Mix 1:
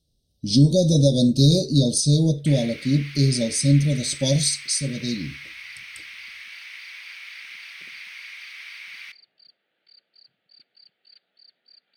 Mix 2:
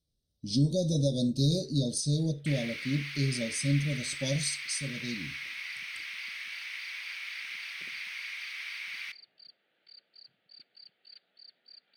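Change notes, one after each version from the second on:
speech −10.5 dB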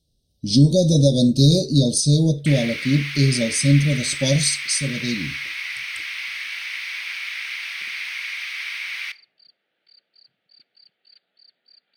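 speech +12.0 dB
second sound +10.0 dB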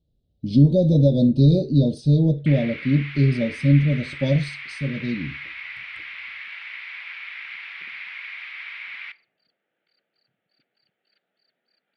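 master: add high-frequency loss of the air 490 metres

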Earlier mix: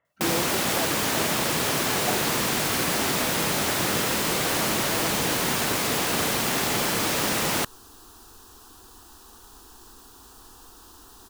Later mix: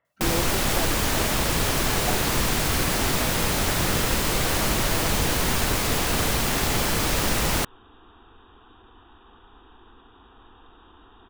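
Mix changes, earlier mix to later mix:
first sound: remove high-pass filter 160 Hz 12 dB per octave
second sound: add linear-phase brick-wall low-pass 3,800 Hz

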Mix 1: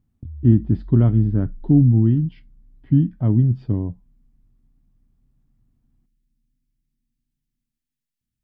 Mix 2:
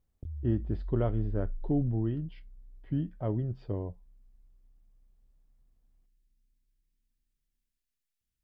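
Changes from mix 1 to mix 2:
speech −4.5 dB
master: add octave-band graphic EQ 125/250/500 Hz −10/−12/+8 dB

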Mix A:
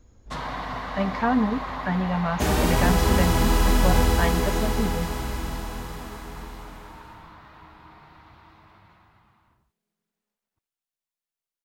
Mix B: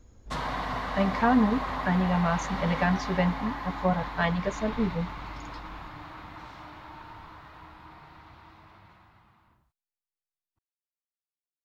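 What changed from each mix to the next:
second sound: muted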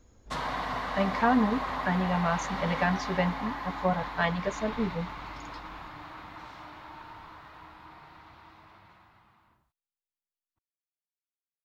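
master: add low-shelf EQ 210 Hz −6 dB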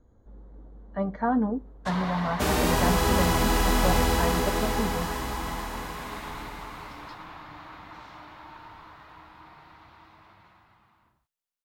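speech: add moving average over 17 samples
first sound: entry +1.55 s
second sound: unmuted

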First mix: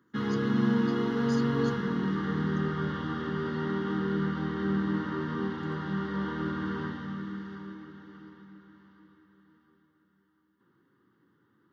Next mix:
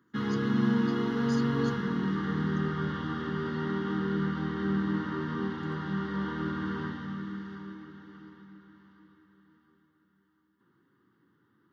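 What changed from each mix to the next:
master: add parametric band 550 Hz −3.5 dB 0.83 octaves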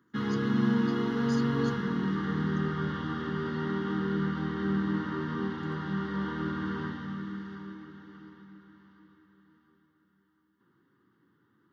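nothing changed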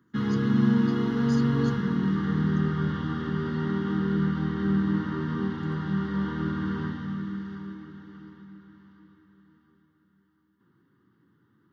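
master: add bass and treble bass +7 dB, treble +1 dB

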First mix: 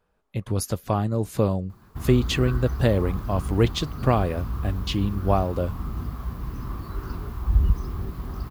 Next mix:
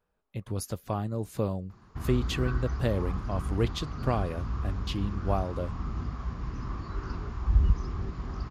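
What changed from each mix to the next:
speech −7.5 dB
background: add Chebyshev low-pass with heavy ripple 7,100 Hz, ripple 3 dB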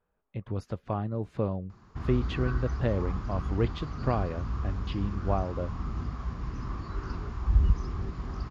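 speech: add low-pass filter 2,500 Hz 12 dB per octave

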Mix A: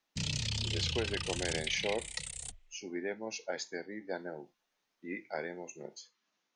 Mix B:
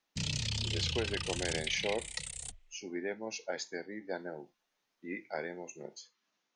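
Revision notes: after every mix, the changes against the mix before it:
nothing changed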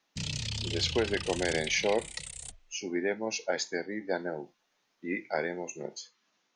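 speech +7.0 dB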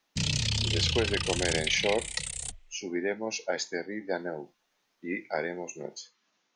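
background +6.5 dB

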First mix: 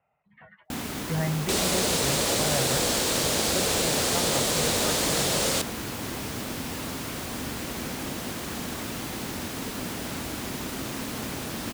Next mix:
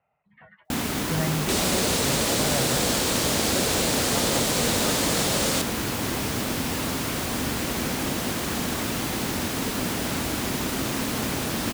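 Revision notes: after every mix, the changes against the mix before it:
first sound +6.0 dB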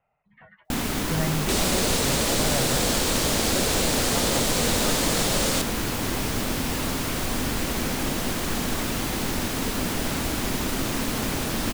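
master: remove high-pass filter 67 Hz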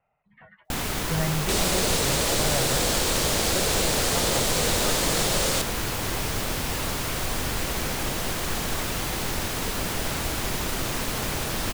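first sound: add parametric band 250 Hz −8.5 dB 0.77 octaves

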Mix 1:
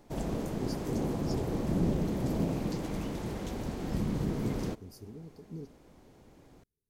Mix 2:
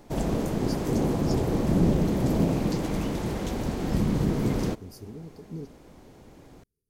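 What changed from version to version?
speech +5.0 dB
background +7.0 dB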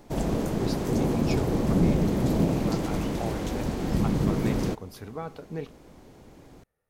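speech: remove Chebyshev band-stop filter 420–4,600 Hz, order 5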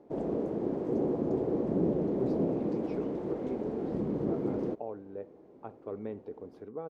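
speech: entry +1.60 s
master: add resonant band-pass 410 Hz, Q 1.6

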